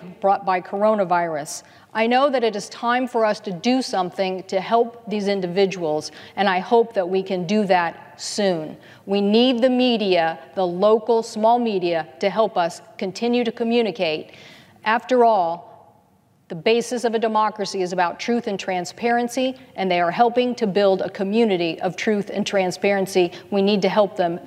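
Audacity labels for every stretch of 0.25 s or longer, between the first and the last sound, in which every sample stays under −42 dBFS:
15.890000	16.500000	silence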